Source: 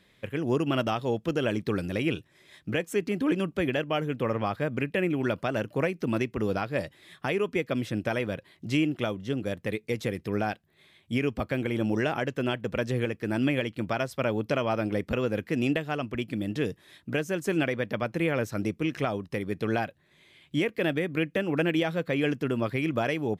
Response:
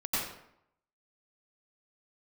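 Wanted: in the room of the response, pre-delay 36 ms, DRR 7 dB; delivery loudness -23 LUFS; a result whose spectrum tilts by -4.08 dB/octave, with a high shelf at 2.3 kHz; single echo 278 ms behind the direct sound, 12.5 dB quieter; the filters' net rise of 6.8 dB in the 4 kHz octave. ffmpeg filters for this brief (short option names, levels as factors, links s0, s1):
-filter_complex "[0:a]highshelf=f=2300:g=4,equalizer=f=4000:t=o:g=6,aecho=1:1:278:0.237,asplit=2[s0][s1];[1:a]atrim=start_sample=2205,adelay=36[s2];[s1][s2]afir=irnorm=-1:irlink=0,volume=0.188[s3];[s0][s3]amix=inputs=2:normalize=0,volume=1.58"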